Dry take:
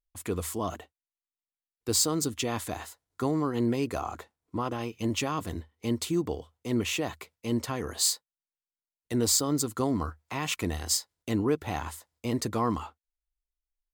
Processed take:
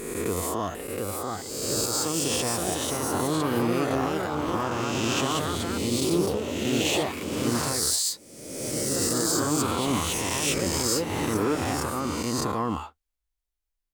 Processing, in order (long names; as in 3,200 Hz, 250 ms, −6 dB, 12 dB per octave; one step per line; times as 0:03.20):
peak hold with a rise ahead of every peak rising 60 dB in 1.52 s
brickwall limiter −16.5 dBFS, peak gain reduction 11 dB
delay with pitch and tempo change per echo 749 ms, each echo +2 semitones, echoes 2